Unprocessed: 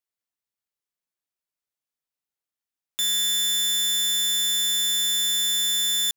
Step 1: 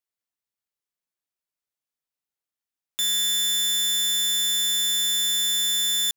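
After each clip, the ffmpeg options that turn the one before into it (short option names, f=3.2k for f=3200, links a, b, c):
-af anull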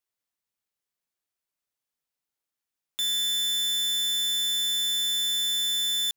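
-af "asoftclip=type=tanh:threshold=-26dB,volume=2dB"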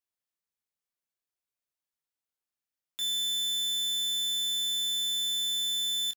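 -filter_complex "[0:a]asplit=2[a][b];[b]adelay=25,volume=-7.5dB[c];[a][c]amix=inputs=2:normalize=0,volume=-6.5dB"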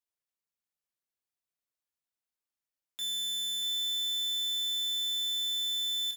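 -af "aecho=1:1:637:0.447,volume=-3.5dB"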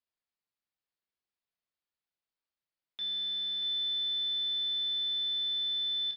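-af "aresample=11025,aresample=44100"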